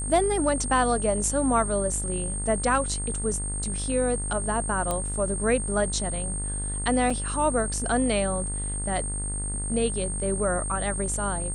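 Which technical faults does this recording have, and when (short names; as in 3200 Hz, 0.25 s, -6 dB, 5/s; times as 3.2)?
buzz 50 Hz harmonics 40 -32 dBFS
tone 8600 Hz -31 dBFS
4.91 pop -13 dBFS
7.1 gap 4.3 ms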